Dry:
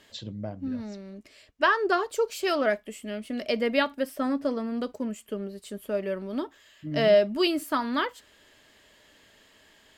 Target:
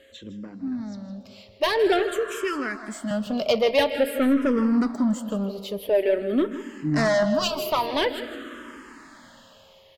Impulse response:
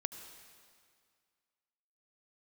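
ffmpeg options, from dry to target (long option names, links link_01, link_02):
-filter_complex "[0:a]asettb=1/sr,asplit=3[link_01][link_02][link_03];[link_01]atrim=end=2.024[link_04];[link_02]atrim=start=2.02:end=3.11,asetpts=PTS-STARTPTS,afade=type=in:duration=0.004:curve=qsin,afade=type=out:start_time=1.086:duration=0.004:curve=qsin,acrossover=split=160|2100[link_05][link_06][link_07];[link_05]acompressor=threshold=-59dB:ratio=4[link_08];[link_06]acompressor=threshold=-37dB:ratio=4[link_09];[link_07]acompressor=threshold=-43dB:ratio=4[link_10];[link_08][link_09][link_10]amix=inputs=3:normalize=0[link_11];[link_03]atrim=start=3.106[link_12];[link_04][link_11]acrossfade=duration=0.004:curve1=hsin:curve2=qsin[link_13];[link_13][link_12]acrossfade=duration=0.004:curve1=qsin:curve2=hsin,asplit=2[link_14][link_15];[1:a]atrim=start_sample=2205,asetrate=28224,aresample=44100,lowpass=5400[link_16];[link_15][link_16]afir=irnorm=-1:irlink=0,volume=-8.5dB[link_17];[link_14][link_17]amix=inputs=2:normalize=0,asoftclip=type=tanh:threshold=-22dB,dynaudnorm=framelen=930:gausssize=3:maxgain=9dB,aeval=exprs='val(0)+0.00251*sin(2*PI*540*n/s)':channel_layout=same,aecho=1:1:160:0.224,asplit=2[link_18][link_19];[link_19]afreqshift=-0.48[link_20];[link_18][link_20]amix=inputs=2:normalize=1"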